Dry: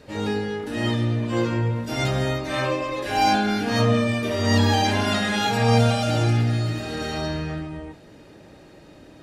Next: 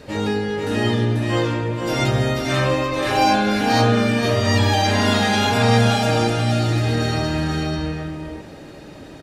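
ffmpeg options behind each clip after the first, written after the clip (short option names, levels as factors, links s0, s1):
-filter_complex "[0:a]asplit=2[s0][s1];[s1]acompressor=threshold=0.0316:ratio=6,volume=1.19[s2];[s0][s2]amix=inputs=2:normalize=0,aecho=1:1:489:0.668"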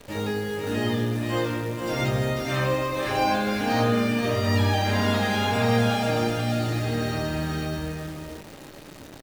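-filter_complex "[0:a]acrossover=split=390|3100[s0][s1][s2];[s2]asoftclip=type=tanh:threshold=0.0266[s3];[s0][s1][s3]amix=inputs=3:normalize=0,asplit=2[s4][s5];[s5]adelay=21,volume=0.251[s6];[s4][s6]amix=inputs=2:normalize=0,acrusher=bits=7:dc=4:mix=0:aa=0.000001,volume=0.531"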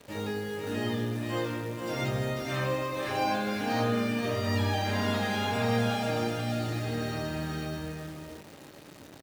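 -af "highpass=75,volume=0.531"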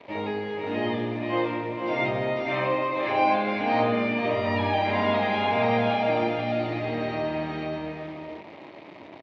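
-af "highpass=110,equalizer=f=140:t=q:w=4:g=-5,equalizer=f=340:t=q:w=4:g=6,equalizer=f=660:t=q:w=4:g=9,equalizer=f=970:t=q:w=4:g=9,equalizer=f=1500:t=q:w=4:g=-5,equalizer=f=2200:t=q:w=4:g=10,lowpass=f=3800:w=0.5412,lowpass=f=3800:w=1.3066,volume=1.19"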